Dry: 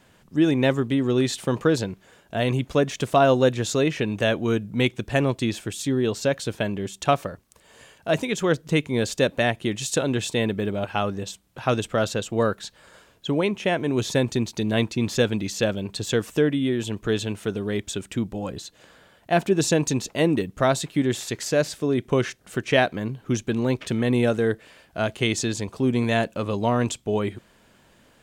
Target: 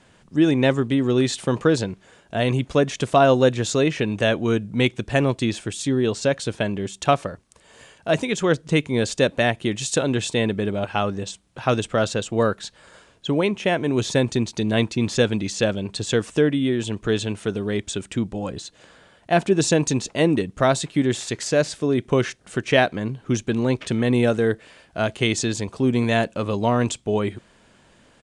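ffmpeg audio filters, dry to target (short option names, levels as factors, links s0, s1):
-af "aresample=22050,aresample=44100,volume=1.26"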